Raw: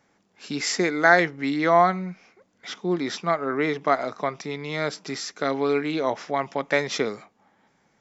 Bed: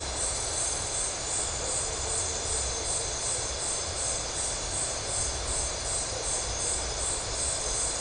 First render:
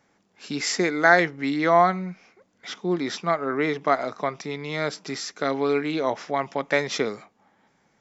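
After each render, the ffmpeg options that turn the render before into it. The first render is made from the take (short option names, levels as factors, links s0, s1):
-af anull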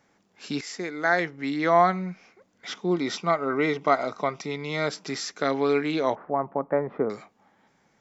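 -filter_complex "[0:a]asettb=1/sr,asplit=3[s0][s1][s2];[s0]atrim=end=2.904[s3];[s1]atrim=start=2.9:end=4.87,asetpts=PTS-STARTPTS,afade=t=in:d=0.004:c=qsin,afade=t=out:st=1.966:d=0.004:c=qsin,asuperstop=centerf=1700:order=20:qfactor=7.5[s4];[s2]atrim=start=4.866[s5];[s3][s4]acrossfade=d=0.004:c1=hsin:c2=qsin[s6];[s6][s5]acrossfade=d=0.004:c1=qsin:c2=hsin,asettb=1/sr,asplit=3[s7][s8][s9];[s7]atrim=end=6.154[s10];[s8]atrim=start=6.15:end=7.1,asetpts=PTS-STARTPTS,afade=t=in:d=0.004:c=qsin,afade=t=out:st=0.946:d=0.004:c=qsin,lowpass=f=1200:w=0.5412,lowpass=f=1200:w=1.3066[s11];[s9]atrim=start=7.096[s12];[s10][s11]acrossfade=d=0.004:c1=hsin:c2=qsin[s13];[s13][s12]acrossfade=d=0.004:c1=qsin:c2=hsin,asplit=2[s14][s15];[s14]atrim=end=0.61,asetpts=PTS-STARTPTS,afade=t=out:st=0.606:d=0.004:c=hsin:silence=0.211349[s16];[s15]atrim=start=0.61,asetpts=PTS-STARTPTS,afade=t=in:d=1.45:silence=0.211349[s17];[s16][s17]concat=n=2:v=0:a=1"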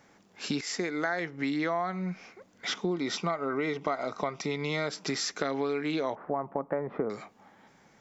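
-filter_complex "[0:a]asplit=2[s0][s1];[s1]alimiter=limit=0.133:level=0:latency=1,volume=0.794[s2];[s0][s2]amix=inputs=2:normalize=0,acompressor=threshold=0.0398:ratio=5"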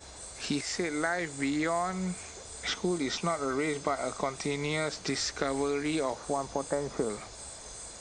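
-filter_complex "[1:a]volume=0.178[s0];[0:a][s0]amix=inputs=2:normalize=0"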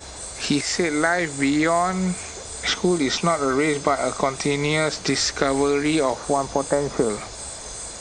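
-af "volume=3.16"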